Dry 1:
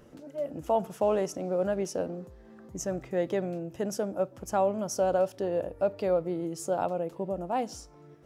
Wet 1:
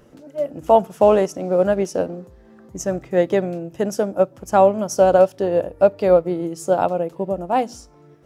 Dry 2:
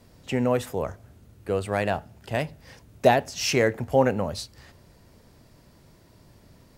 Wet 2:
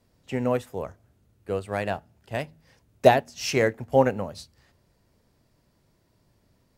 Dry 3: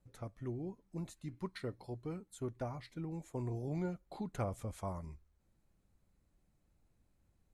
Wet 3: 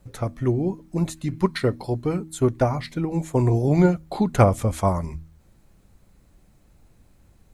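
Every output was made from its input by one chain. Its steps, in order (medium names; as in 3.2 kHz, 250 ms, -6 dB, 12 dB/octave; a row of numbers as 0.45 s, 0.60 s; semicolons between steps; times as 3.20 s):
de-hum 79.64 Hz, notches 4; upward expansion 1.5:1, over -41 dBFS; peak normalisation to -2 dBFS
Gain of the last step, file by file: +13.5 dB, +3.0 dB, +22.5 dB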